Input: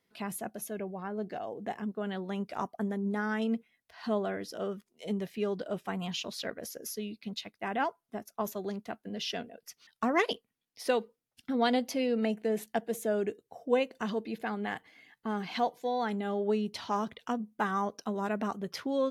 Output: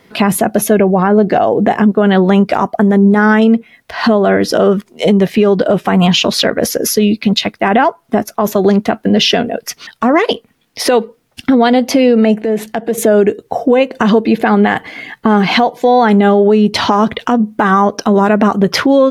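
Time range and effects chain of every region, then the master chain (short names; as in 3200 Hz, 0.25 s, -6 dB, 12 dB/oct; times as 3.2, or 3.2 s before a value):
12.4–12.98 high shelf 7900 Hz -4.5 dB + compressor 3:1, threshold -47 dBFS
whole clip: high shelf 3800 Hz -9.5 dB; compressor 6:1, threshold -37 dBFS; maximiser +32.5 dB; gain -1 dB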